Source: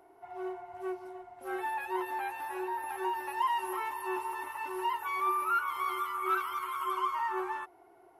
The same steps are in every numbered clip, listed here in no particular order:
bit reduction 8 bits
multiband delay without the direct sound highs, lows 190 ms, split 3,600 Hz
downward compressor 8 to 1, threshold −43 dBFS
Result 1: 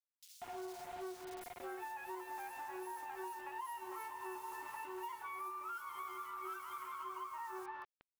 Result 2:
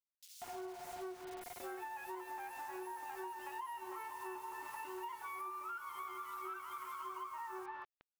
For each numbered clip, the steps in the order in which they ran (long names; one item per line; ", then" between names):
bit reduction, then downward compressor, then multiband delay without the direct sound
bit reduction, then multiband delay without the direct sound, then downward compressor